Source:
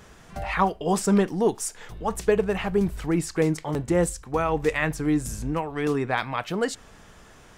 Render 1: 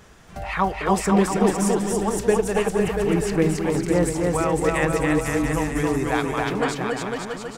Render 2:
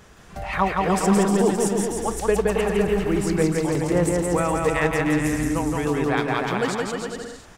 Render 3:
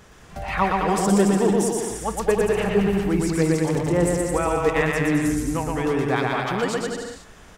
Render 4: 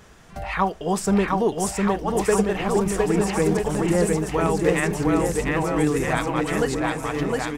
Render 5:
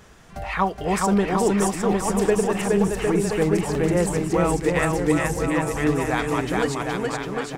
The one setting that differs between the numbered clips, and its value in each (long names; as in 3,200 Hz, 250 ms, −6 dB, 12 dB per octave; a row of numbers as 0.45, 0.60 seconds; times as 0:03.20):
bouncing-ball delay, first gap: 280, 170, 120, 710, 420 milliseconds